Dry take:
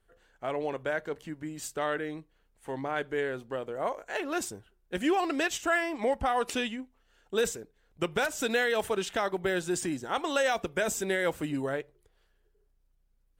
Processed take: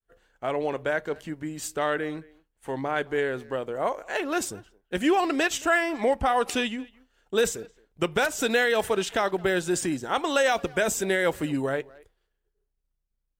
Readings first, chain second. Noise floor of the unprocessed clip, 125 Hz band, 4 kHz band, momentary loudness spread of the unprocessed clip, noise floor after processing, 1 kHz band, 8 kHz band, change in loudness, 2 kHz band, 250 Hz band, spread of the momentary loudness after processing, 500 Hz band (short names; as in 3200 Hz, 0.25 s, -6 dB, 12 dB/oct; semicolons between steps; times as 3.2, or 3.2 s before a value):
-70 dBFS, +4.5 dB, +4.5 dB, 12 LU, -78 dBFS, +4.5 dB, +4.5 dB, +4.5 dB, +4.5 dB, +4.5 dB, 12 LU, +4.5 dB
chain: expander -59 dBFS; speakerphone echo 0.22 s, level -22 dB; gain +4.5 dB